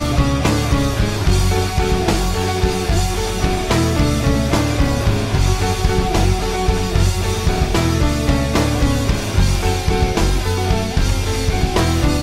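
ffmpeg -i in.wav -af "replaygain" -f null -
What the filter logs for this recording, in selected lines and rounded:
track_gain = +1.3 dB
track_peak = 0.497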